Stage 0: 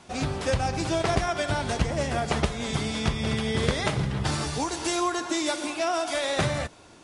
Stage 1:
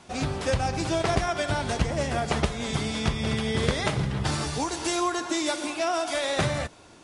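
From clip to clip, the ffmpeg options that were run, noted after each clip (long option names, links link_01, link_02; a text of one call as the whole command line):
ffmpeg -i in.wav -af anull out.wav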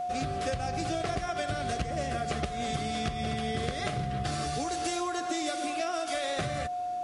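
ffmpeg -i in.wav -af "aeval=exprs='val(0)+0.0398*sin(2*PI*720*n/s)':channel_layout=same,asuperstop=centerf=920:order=4:qfactor=3.8,acompressor=threshold=-26dB:ratio=6,volume=-2dB" out.wav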